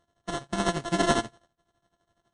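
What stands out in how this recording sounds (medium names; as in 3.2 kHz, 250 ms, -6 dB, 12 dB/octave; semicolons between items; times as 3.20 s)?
a buzz of ramps at a fixed pitch in blocks of 64 samples; tremolo triangle 12 Hz, depth 85%; aliases and images of a low sample rate 2.4 kHz, jitter 0%; MP3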